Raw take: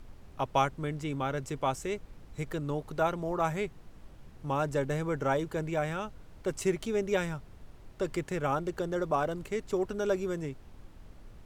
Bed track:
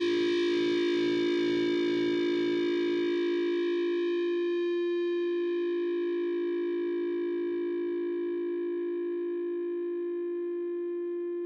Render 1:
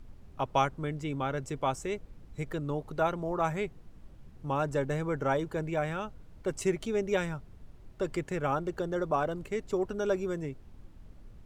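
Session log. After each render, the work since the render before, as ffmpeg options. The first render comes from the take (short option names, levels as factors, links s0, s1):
-af "afftdn=nr=6:nf=-52"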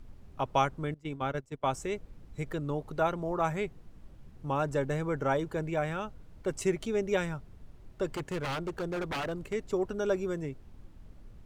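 -filter_complex "[0:a]asettb=1/sr,asplit=3[s0][s1][s2];[s0]atrim=end=0.944[s3];[s1]atrim=start=0.94:end=1.72,asetpts=PTS-STARTPTS,afade=t=in:d=0.004:c=qsin,afade=t=out:st=0.776:d=0.004:c=qsin,agate=range=0.1:threshold=0.02:ratio=16:release=100:detection=peak[s4];[s2]atrim=start=1.716[s5];[s3][s4]acrossfade=d=0.004:c1=hsin:c2=qsin[s6];[s6][s5]acrossfade=d=0.004:c1=qsin:c2=hsin,asettb=1/sr,asplit=3[s7][s8][s9];[s7]atrim=end=8.074[s10];[s8]atrim=start=8.07:end=9.53,asetpts=PTS-STARTPTS,afade=t=in:d=0.004:c=qsin,afade=t=out:st=1.456:d=0.004:c=qsin,aeval=exprs='0.0376*(abs(mod(val(0)/0.0376+3,4)-2)-1)':c=same[s11];[s9]atrim=start=9.526[s12];[s10][s11]acrossfade=d=0.004:c1=hsin:c2=qsin[s13];[s13][s12]acrossfade=d=0.004:c1=qsin:c2=hsin"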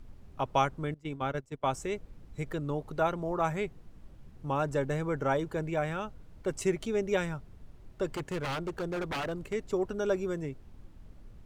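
-af anull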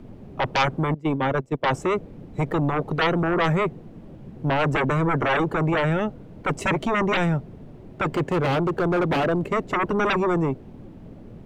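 -filter_complex "[0:a]acrossover=split=120|810|2900[s0][s1][s2][s3];[s1]aeval=exprs='0.119*sin(PI/2*5.62*val(0)/0.119)':c=same[s4];[s2]crystalizer=i=9.5:c=0[s5];[s0][s4][s5][s3]amix=inputs=4:normalize=0"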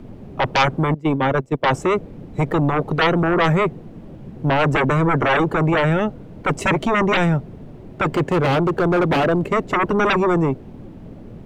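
-af "volume=1.68"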